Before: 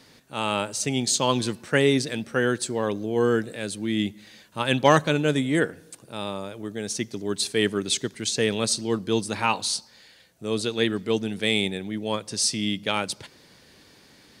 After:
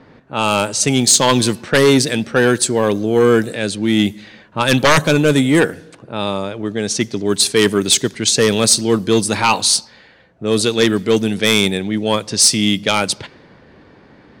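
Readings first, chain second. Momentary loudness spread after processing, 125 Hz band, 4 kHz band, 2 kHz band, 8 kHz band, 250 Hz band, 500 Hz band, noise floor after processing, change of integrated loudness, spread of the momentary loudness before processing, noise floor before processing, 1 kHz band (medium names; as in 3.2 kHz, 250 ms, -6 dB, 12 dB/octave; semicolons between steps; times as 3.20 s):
10 LU, +9.5 dB, +10.5 dB, +9.0 dB, +12.5 dB, +10.0 dB, +9.5 dB, -47 dBFS, +10.0 dB, 11 LU, -55 dBFS, +8.0 dB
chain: sine folder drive 9 dB, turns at -4 dBFS; level-controlled noise filter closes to 1.3 kHz, open at -10 dBFS; treble shelf 11 kHz +10 dB; trim -1.5 dB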